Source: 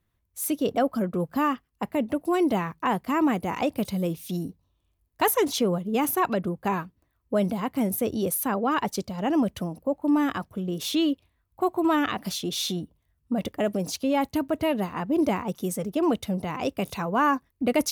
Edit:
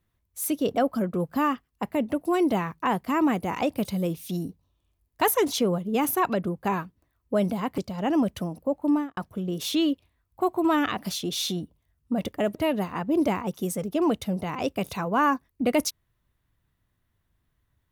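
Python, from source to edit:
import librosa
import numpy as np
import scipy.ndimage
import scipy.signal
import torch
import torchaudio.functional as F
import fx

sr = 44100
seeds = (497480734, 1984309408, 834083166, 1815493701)

y = fx.studio_fade_out(x, sr, start_s=10.08, length_s=0.29)
y = fx.edit(y, sr, fx.cut(start_s=7.78, length_s=1.2),
    fx.cut(start_s=13.75, length_s=0.81), tone=tone)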